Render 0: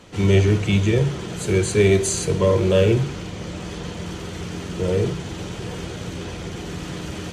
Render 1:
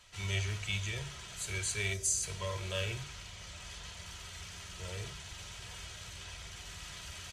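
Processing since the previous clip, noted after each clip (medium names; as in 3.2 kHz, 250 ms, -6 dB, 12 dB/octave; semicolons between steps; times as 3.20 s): amplifier tone stack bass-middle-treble 10-0-10; time-frequency box 1.93–2.24 s, 660–4600 Hz -10 dB; comb 3.1 ms, depth 33%; trim -6 dB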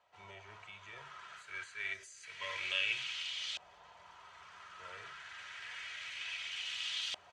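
differentiator; compression 3:1, threshold -46 dBFS, peak gain reduction 14 dB; LFO low-pass saw up 0.28 Hz 740–3500 Hz; trim +13 dB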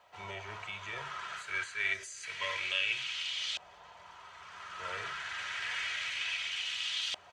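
gain riding within 4 dB 0.5 s; trim +6 dB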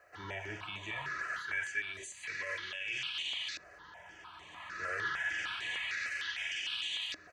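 peak limiter -29 dBFS, peak gain reduction 11.5 dB; small resonant body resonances 300/1700 Hz, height 15 dB, ringing for 60 ms; stepped phaser 6.6 Hz 920–5100 Hz; trim +2 dB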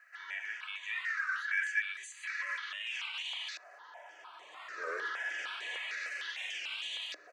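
in parallel at -5 dB: saturation -31.5 dBFS, distortion -17 dB; on the sum: high-pass sweep 1.7 kHz -> 500 Hz, 1.77–4.60 s; warped record 33 1/3 rpm, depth 160 cents; trim -6 dB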